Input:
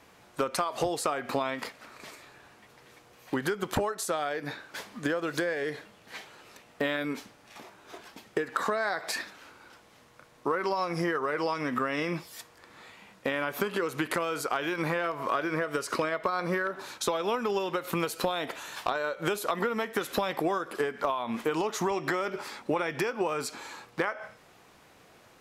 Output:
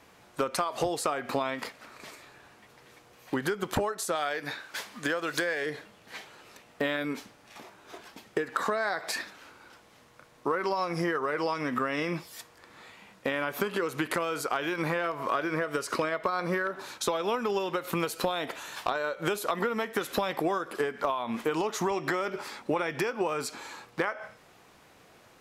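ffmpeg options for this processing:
-filter_complex "[0:a]asettb=1/sr,asplit=3[s0][s1][s2];[s0]atrim=end=4.154[s3];[s1]atrim=start=4.15:end=5.66,asetpts=PTS-STARTPTS,afade=t=in:d=0.004:c=qsin,afade=t=out:st=1.506:d=0.004:c=qsin,tiltshelf=f=730:g=-4.5[s4];[s2]atrim=start=5.656[s5];[s3][s4]acrossfade=d=0.004:c1=hsin:c2=qsin[s6];[s6][s5]acrossfade=d=0.004:c1=qsin:c2=hsin"

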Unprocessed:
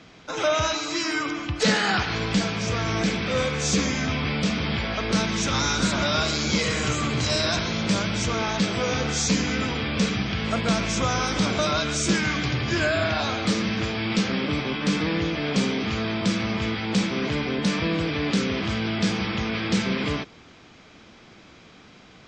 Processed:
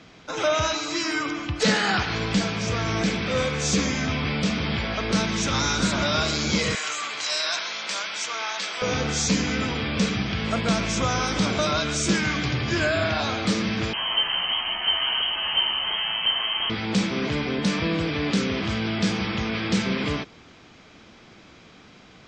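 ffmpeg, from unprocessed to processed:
-filter_complex "[0:a]asettb=1/sr,asplit=3[s0][s1][s2];[s0]atrim=end=6.754[s3];[s1]atrim=start=6.75:end=8.82,asetpts=PTS-STARTPTS,afade=t=in:d=0.004:c=qsin,afade=t=out:st=2.066:d=0.004:c=qsin,highpass=920[s4];[s2]atrim=start=8.816[s5];[s3][s4]acrossfade=d=0.004:c1=hsin:c2=qsin[s6];[s6][s5]acrossfade=d=0.004:c1=qsin:c2=hsin,asettb=1/sr,asplit=3[s7][s8][s9];[s7]atrim=end=13.934[s10];[s8]atrim=start=13.93:end=16.7,asetpts=PTS-STARTPTS,afade=t=in:d=0.004:c=qsin,afade=t=out:st=2.766:d=0.004:c=qsin,lowpass=f=2800:t=q:w=0.5098,lowpass=f=2800:t=q:w=0.6013,lowpass=f=2800:t=q:w=0.9,lowpass=f=2800:t=q:w=2.563,afreqshift=-3300[s11];[s9]atrim=start=16.696[s12];[s10][s11]acrossfade=d=0.004:c1=hsin:c2=qsin[s13];[s13][s12]acrossfade=d=0.004:c1=qsin:c2=hsin"

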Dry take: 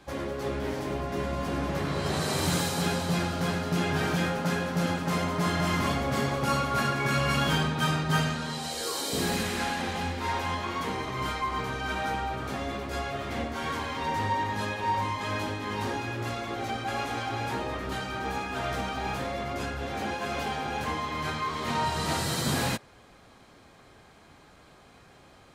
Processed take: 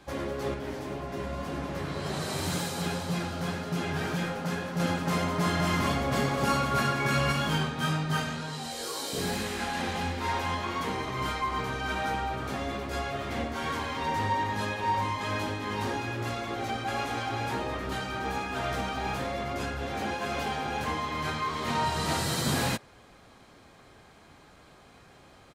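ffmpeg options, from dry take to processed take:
-filter_complex "[0:a]asettb=1/sr,asplit=3[s0][s1][s2];[s0]atrim=end=0.544[s3];[s1]atrim=start=0.54:end=4.8,asetpts=PTS-STARTPTS,afade=t=in:d=0.004:c=qsin,afade=t=out:st=4.256:d=0.004:c=qsin,flanger=delay=4.5:depth=8.8:regen=-48:speed=1.9:shape=triangular[s4];[s2]atrim=start=4.796[s5];[s3][s4]acrossfade=d=0.004:c1=hsin:c2=qsin[s6];[s6][s5]acrossfade=d=0.004:c1=qsin:c2=hsin,asplit=2[s7][s8];[s8]afade=t=in:st=5.87:d=0.01,afade=t=out:st=6.31:d=0.01,aecho=0:1:250|500|750|1000|1250|1500|1750|2000:0.421697|0.253018|0.151811|0.0910864|0.0546519|0.0327911|0.0196747|0.0118048[s9];[s7][s9]amix=inputs=2:normalize=0,asplit=3[s10][s11][s12];[s10]afade=t=out:st=7.31:d=0.02[s13];[s11]flanger=delay=19:depth=3:speed=2,afade=t=in:st=7.31:d=0.02,afade=t=out:st=9.73:d=0.02[s14];[s12]afade=t=in:st=9.73:d=0.02[s15];[s13][s14][s15]amix=inputs=3:normalize=0"

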